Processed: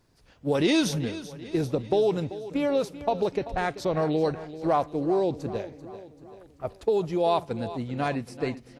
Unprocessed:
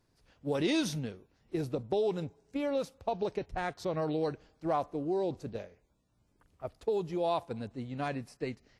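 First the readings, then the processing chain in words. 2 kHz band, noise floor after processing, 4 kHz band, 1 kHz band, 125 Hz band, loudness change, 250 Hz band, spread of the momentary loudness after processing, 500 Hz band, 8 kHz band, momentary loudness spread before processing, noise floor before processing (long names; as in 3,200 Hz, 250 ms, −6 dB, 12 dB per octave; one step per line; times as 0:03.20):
+7.0 dB, −56 dBFS, +7.0 dB, +7.0 dB, +7.0 dB, +7.0 dB, +7.0 dB, 12 LU, +7.0 dB, can't be measured, 11 LU, −72 dBFS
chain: repeating echo 387 ms, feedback 53%, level −14.5 dB
level +7 dB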